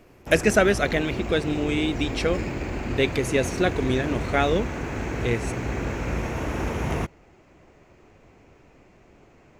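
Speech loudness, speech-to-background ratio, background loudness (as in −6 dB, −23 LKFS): −24.5 LKFS, 5.5 dB, −30.0 LKFS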